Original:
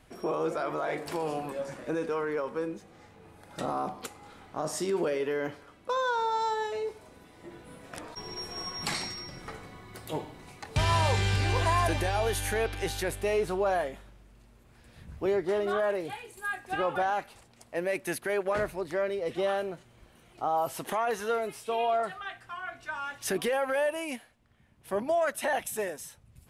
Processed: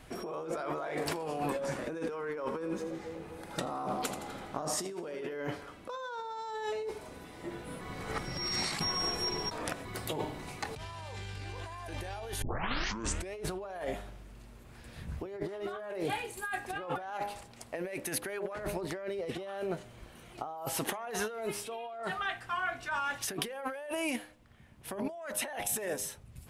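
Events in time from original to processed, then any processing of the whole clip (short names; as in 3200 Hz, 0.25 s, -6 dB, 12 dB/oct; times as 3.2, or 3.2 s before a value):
2.41–5.34 split-band echo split 660 Hz, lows 0.246 s, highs 83 ms, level -11 dB
7.81–9.85 reverse
12.42 tape start 0.93 s
whole clip: de-hum 102 Hz, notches 10; negative-ratio compressor -37 dBFS, ratio -1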